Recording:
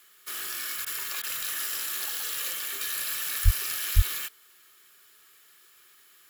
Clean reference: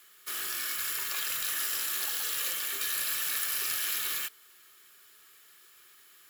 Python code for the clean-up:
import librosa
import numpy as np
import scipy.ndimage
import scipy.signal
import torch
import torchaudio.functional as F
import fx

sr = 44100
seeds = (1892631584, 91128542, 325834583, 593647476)

y = fx.highpass(x, sr, hz=140.0, slope=24, at=(3.44, 3.56), fade=0.02)
y = fx.highpass(y, sr, hz=140.0, slope=24, at=(3.95, 4.07), fade=0.02)
y = fx.fix_interpolate(y, sr, at_s=(0.85, 1.22), length_ms=13.0)